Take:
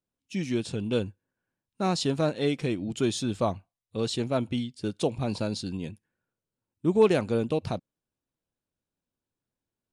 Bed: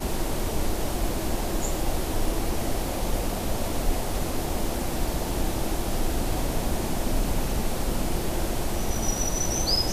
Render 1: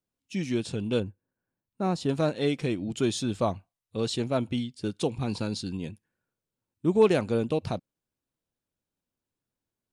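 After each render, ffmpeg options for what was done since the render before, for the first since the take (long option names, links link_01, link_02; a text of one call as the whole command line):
ffmpeg -i in.wav -filter_complex "[0:a]asettb=1/sr,asplit=3[link_01][link_02][link_03];[link_01]atrim=end=1.004[link_04];[link_02]atrim=start=1:end=2.09,asetpts=PTS-STARTPTS,afade=type=in:duration=0.004:curve=qsin,afade=type=out:start_time=1.086:duration=0.004:curve=qsin,equalizer=frequency=5300:width=0.34:gain=-10[link_05];[link_03]atrim=start=2.086[link_06];[link_04][link_05]acrossfade=duration=0.004:curve1=hsin:curve2=qsin[link_07];[link_07][link_06]acrossfade=duration=0.004:curve1=qsin:curve2=hsin,asettb=1/sr,asplit=3[link_08][link_09][link_10];[link_08]atrim=end=4.874[link_11];[link_09]atrim=start=4.87:end=5.8,asetpts=PTS-STARTPTS,afade=type=in:duration=0.004:curve=qsin,afade=type=out:start_time=0.926:duration=0.004:curve=qsin,equalizer=frequency=610:width=5.1:gain=-10[link_12];[link_10]atrim=start=5.796[link_13];[link_11][link_12]acrossfade=duration=0.004:curve1=hsin:curve2=qsin[link_14];[link_14][link_13]acrossfade=duration=0.004:curve1=qsin:curve2=hsin" out.wav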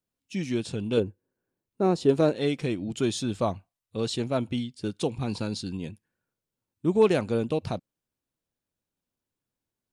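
ffmpeg -i in.wav -filter_complex "[0:a]asettb=1/sr,asplit=3[link_01][link_02][link_03];[link_01]atrim=end=0.974[link_04];[link_02]atrim=start=0.97:end=2.37,asetpts=PTS-STARTPTS,afade=type=in:duration=0.004:curve=qsin,afade=type=out:start_time=1.396:duration=0.004:curve=qsin,equalizer=frequency=400:width=1.7:gain=9.5[link_05];[link_03]atrim=start=2.366[link_06];[link_04][link_05]acrossfade=duration=0.004:curve1=hsin:curve2=qsin[link_07];[link_07][link_06]acrossfade=duration=0.004:curve1=qsin:curve2=hsin" out.wav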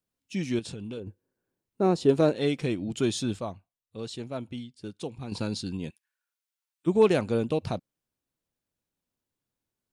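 ffmpeg -i in.wav -filter_complex "[0:a]asettb=1/sr,asplit=3[link_01][link_02][link_03];[link_01]atrim=end=0.594[link_04];[link_02]atrim=start=0.59:end=1.07,asetpts=PTS-STARTPTS,afade=type=in:duration=0.004:curve=qsin,afade=type=out:start_time=0.476:duration=0.004:curve=qsin,acompressor=threshold=-34dB:ratio=6:attack=3.2:release=140:knee=1:detection=peak[link_05];[link_03]atrim=start=1.066[link_06];[link_04][link_05]acrossfade=duration=0.004:curve1=hsin:curve2=qsin[link_07];[link_07][link_06]acrossfade=duration=0.004:curve1=qsin:curve2=hsin,asplit=3[link_08][link_09][link_10];[link_08]afade=type=out:start_time=5.89:duration=0.02[link_11];[link_09]highpass=1400,afade=type=in:start_time=5.89:duration=0.02,afade=type=out:start_time=6.86:duration=0.02[link_12];[link_10]afade=type=in:start_time=6.86:duration=0.02[link_13];[link_11][link_12][link_13]amix=inputs=3:normalize=0,asplit=3[link_14][link_15][link_16];[link_14]atrim=end=3.392[link_17];[link_15]atrim=start=3.388:end=5.322,asetpts=PTS-STARTPTS,volume=-8dB[link_18];[link_16]atrim=start=5.318[link_19];[link_17][link_18]acrossfade=duration=0.004:curve1=hsin:curve2=hsin[link_20];[link_20][link_19]acrossfade=duration=0.004:curve1=hsin:curve2=hsin" out.wav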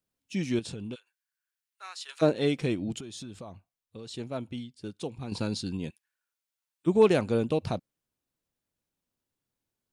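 ffmpeg -i in.wav -filter_complex "[0:a]asplit=3[link_01][link_02][link_03];[link_01]afade=type=out:start_time=0.94:duration=0.02[link_04];[link_02]highpass=frequency=1400:width=0.5412,highpass=frequency=1400:width=1.3066,afade=type=in:start_time=0.94:duration=0.02,afade=type=out:start_time=2.21:duration=0.02[link_05];[link_03]afade=type=in:start_time=2.21:duration=0.02[link_06];[link_04][link_05][link_06]amix=inputs=3:normalize=0,asettb=1/sr,asplit=3[link_07][link_08][link_09];[link_07]atrim=end=2.984[link_10];[link_08]atrim=start=2.98:end=4.14,asetpts=PTS-STARTPTS,afade=type=in:duration=0.004:curve=qsin,afade=type=out:start_time=1.156:duration=0.004:curve=qsin,acompressor=threshold=-37dB:ratio=20:attack=3.2:release=140:knee=1:detection=peak[link_11];[link_09]atrim=start=4.136[link_12];[link_10][link_11]acrossfade=duration=0.004:curve1=hsin:curve2=qsin[link_13];[link_13][link_12]acrossfade=duration=0.004:curve1=qsin:curve2=hsin" out.wav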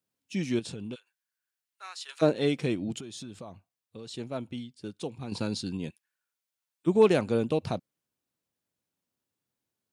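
ffmpeg -i in.wav -af "highpass=94" out.wav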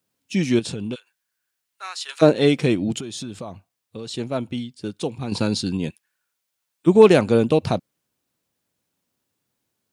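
ffmpeg -i in.wav -af "volume=9.5dB,alimiter=limit=-2dB:level=0:latency=1" out.wav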